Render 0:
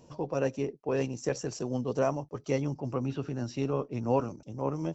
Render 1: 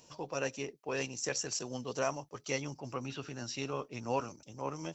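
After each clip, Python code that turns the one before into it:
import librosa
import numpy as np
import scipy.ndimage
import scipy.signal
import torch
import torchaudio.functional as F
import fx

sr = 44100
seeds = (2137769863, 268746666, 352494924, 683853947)

y = fx.tilt_shelf(x, sr, db=-9.0, hz=1100.0)
y = y * 10.0 ** (-1.5 / 20.0)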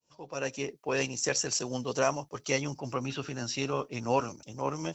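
y = fx.fade_in_head(x, sr, length_s=0.72)
y = y * 10.0 ** (6.0 / 20.0)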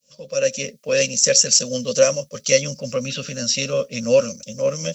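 y = fx.curve_eq(x, sr, hz=(120.0, 220.0, 350.0, 550.0, 790.0, 1200.0, 2100.0, 3700.0, 5200.0), db=(0, 11, -16, 15, -20, -3, 4, 9, 12))
y = y * 10.0 ** (4.0 / 20.0)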